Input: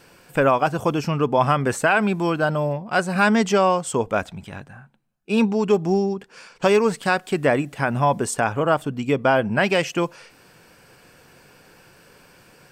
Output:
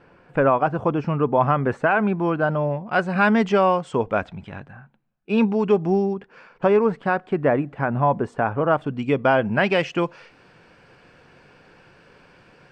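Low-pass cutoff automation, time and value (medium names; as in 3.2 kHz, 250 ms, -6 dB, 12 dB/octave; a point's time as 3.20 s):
2.25 s 1.7 kHz
2.92 s 2.8 kHz
6.06 s 2.8 kHz
6.65 s 1.5 kHz
8.57 s 1.5 kHz
8.97 s 3.4 kHz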